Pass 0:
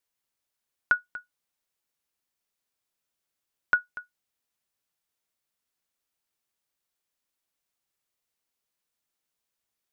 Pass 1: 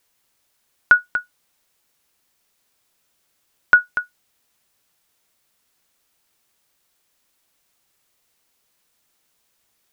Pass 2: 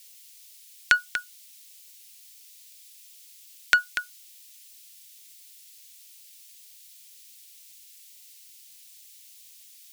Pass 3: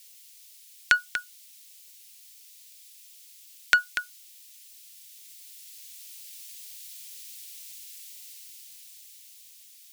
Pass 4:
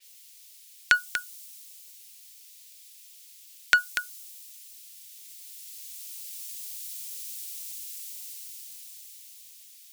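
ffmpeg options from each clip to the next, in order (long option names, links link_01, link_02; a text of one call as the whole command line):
ffmpeg -i in.wav -af "alimiter=level_in=17dB:limit=-1dB:release=50:level=0:latency=1,volume=-1dB" out.wav
ffmpeg -i in.wav -af "aexciter=amount=14.4:drive=6.4:freq=2000,volume=-10dB" out.wav
ffmpeg -i in.wav -af "dynaudnorm=framelen=290:gausssize=13:maxgain=8dB,volume=-1dB" out.wav
ffmpeg -i in.wav -af "adynamicequalizer=threshold=0.00224:dfrequency=5200:dqfactor=0.7:tfrequency=5200:tqfactor=0.7:attack=5:release=100:ratio=0.375:range=3.5:mode=boostabove:tftype=highshelf" out.wav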